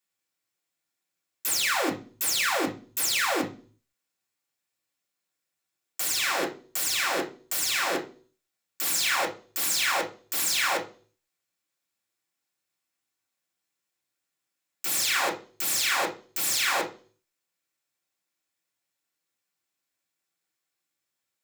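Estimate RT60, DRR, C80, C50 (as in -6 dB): 0.40 s, -2.5 dB, 18.5 dB, 12.5 dB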